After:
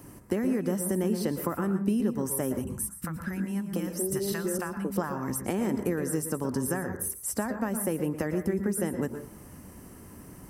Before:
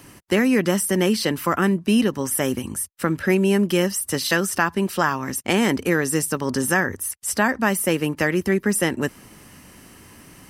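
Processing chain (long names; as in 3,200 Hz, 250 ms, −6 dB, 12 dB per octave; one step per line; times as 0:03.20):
downward compressor, threshold −24 dBFS, peak gain reduction 10.5 dB
parametric band 3,200 Hz −14.5 dB 2.3 octaves
0:02.64–0:04.97: three-band delay without the direct sound lows, highs, mids 30/720 ms, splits 230/710 Hz
convolution reverb RT60 0.35 s, pre-delay 107 ms, DRR 7.5 dB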